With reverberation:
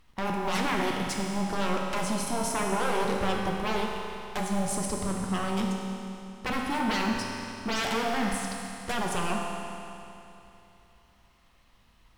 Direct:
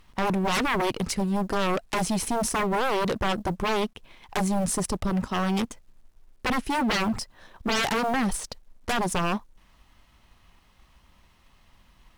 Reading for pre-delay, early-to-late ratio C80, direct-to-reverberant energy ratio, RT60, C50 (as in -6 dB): 8 ms, 2.0 dB, -1.0 dB, 2.9 s, 1.0 dB